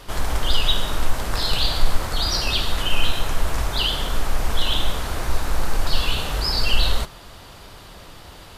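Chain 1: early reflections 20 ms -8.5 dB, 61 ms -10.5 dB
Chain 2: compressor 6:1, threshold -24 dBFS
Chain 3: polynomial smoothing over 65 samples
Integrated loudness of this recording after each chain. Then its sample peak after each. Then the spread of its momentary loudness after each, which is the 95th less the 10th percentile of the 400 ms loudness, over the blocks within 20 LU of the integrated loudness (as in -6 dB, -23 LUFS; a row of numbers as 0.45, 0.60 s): -23.0, -32.0, -29.0 LUFS; -3.0, -15.5, -3.5 dBFS; 21, 14, 18 LU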